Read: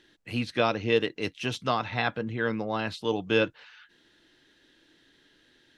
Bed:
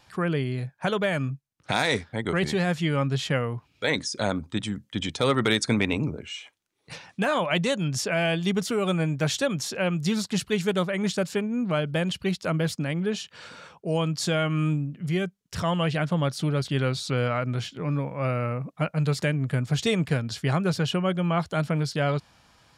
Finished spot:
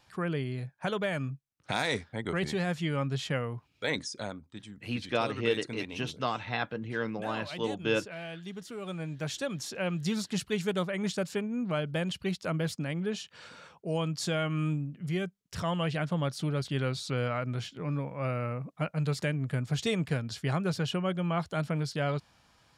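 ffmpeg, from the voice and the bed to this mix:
-filter_complex "[0:a]adelay=4550,volume=-4.5dB[a];[1:a]volume=5dB,afade=t=out:st=4:d=0.39:silence=0.298538,afade=t=in:st=8.63:d=1.38:silence=0.281838[b];[a][b]amix=inputs=2:normalize=0"

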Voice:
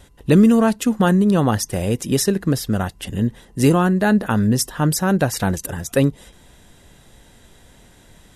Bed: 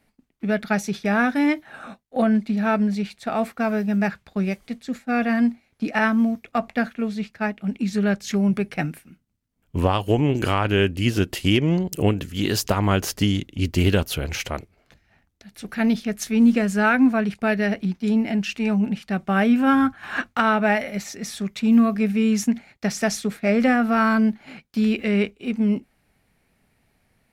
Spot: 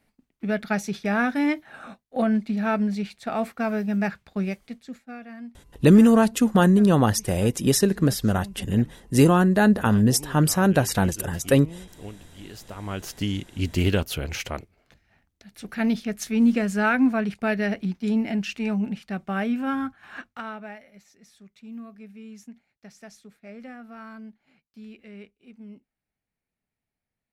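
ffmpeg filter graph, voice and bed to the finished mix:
-filter_complex "[0:a]adelay=5550,volume=-1.5dB[a];[1:a]volume=14dB,afade=t=out:st=4.41:d=0.79:silence=0.141254,afade=t=in:st=12.69:d=0.94:silence=0.141254,afade=t=out:st=18.34:d=2.46:silence=0.1[b];[a][b]amix=inputs=2:normalize=0"

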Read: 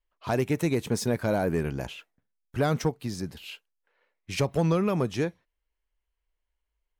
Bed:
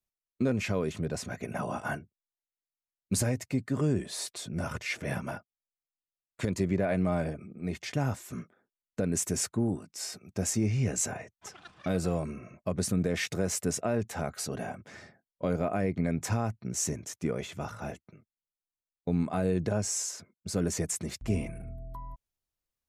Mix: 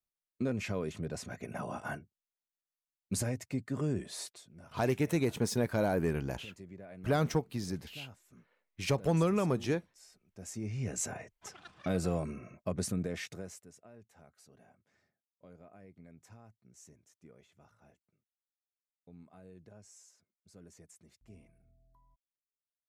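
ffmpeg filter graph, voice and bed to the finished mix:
-filter_complex "[0:a]adelay=4500,volume=-4dB[a];[1:a]volume=13dB,afade=t=out:st=4.21:d=0.25:silence=0.16788,afade=t=in:st=10.33:d=1.03:silence=0.11885,afade=t=out:st=12.59:d=1.06:silence=0.0668344[b];[a][b]amix=inputs=2:normalize=0"

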